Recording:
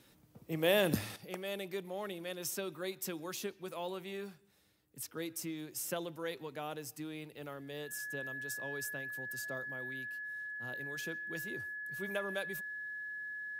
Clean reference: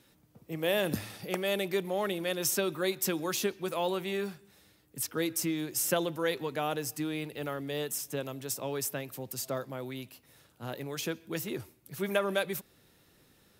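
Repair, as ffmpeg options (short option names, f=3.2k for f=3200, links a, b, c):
-af "bandreject=f=1.7k:w=30,asetnsamples=n=441:p=0,asendcmd='1.16 volume volume 9.5dB',volume=0dB"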